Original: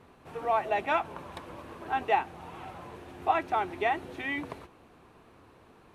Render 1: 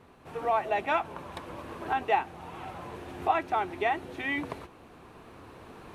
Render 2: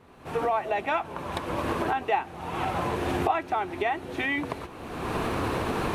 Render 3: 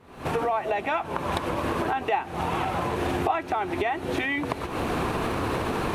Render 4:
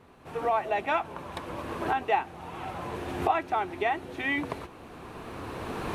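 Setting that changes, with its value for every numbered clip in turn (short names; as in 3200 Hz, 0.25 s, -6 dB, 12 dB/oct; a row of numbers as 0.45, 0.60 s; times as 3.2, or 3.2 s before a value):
recorder AGC, rising by: 5, 35, 87, 13 dB/s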